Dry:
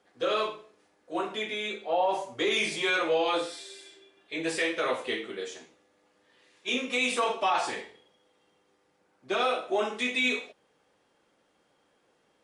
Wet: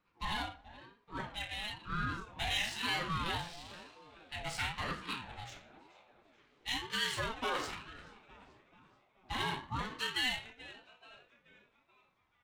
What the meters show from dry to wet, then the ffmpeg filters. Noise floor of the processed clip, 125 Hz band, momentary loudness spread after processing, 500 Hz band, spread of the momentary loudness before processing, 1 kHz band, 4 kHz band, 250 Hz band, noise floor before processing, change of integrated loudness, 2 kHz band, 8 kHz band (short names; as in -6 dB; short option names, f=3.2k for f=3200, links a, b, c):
-74 dBFS, +9.0 dB, 20 LU, -18.0 dB, 13 LU, -8.5 dB, -4.0 dB, -10.0 dB, -70 dBFS, -8.5 dB, -7.0 dB, -6.0 dB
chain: -filter_complex "[0:a]highshelf=f=2.4k:g=8.5,asplit=6[a][b][c][d][e][f];[b]adelay=432,afreqshift=-140,volume=-16.5dB[g];[c]adelay=864,afreqshift=-280,volume=-22.3dB[h];[d]adelay=1296,afreqshift=-420,volume=-28.2dB[i];[e]adelay=1728,afreqshift=-560,volume=-34dB[j];[f]adelay=2160,afreqshift=-700,volume=-39.9dB[k];[a][g][h][i][j][k]amix=inputs=6:normalize=0,adynamicsmooth=sensitivity=6:basefreq=3.1k,aeval=exprs='val(0)*sin(2*PI*520*n/s+520*0.35/1*sin(2*PI*1*n/s))':c=same,volume=-8dB"